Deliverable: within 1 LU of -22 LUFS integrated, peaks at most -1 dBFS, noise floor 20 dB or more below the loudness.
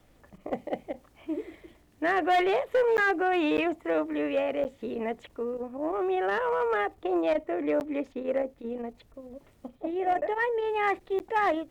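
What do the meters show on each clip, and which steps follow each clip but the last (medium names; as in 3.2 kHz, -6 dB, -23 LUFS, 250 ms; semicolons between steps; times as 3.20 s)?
clipped samples 0.9%; clipping level -19.5 dBFS; dropouts 6; longest dropout 9.8 ms; loudness -28.5 LUFS; peak level -19.5 dBFS; loudness target -22.0 LUFS
-> clip repair -19.5 dBFS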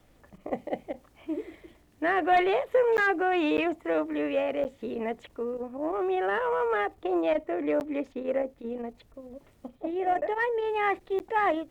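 clipped samples 0.0%; dropouts 6; longest dropout 9.8 ms
-> interpolate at 2.97/3.57/4.64/7.80/10.21/11.19 s, 9.8 ms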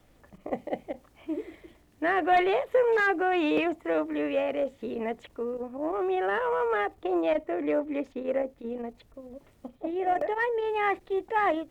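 dropouts 0; loudness -28.5 LUFS; peak level -13.5 dBFS; loudness target -22.0 LUFS
-> trim +6.5 dB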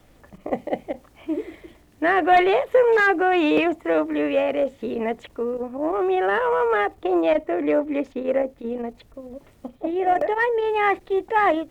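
loudness -22.0 LUFS; peak level -7.0 dBFS; noise floor -54 dBFS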